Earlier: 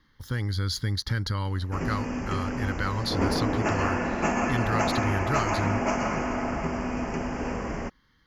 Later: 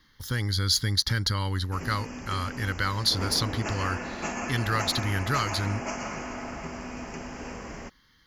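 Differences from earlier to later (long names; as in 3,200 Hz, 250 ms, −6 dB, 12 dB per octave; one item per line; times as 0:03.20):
background −8.5 dB
master: add high-shelf EQ 2,500 Hz +10.5 dB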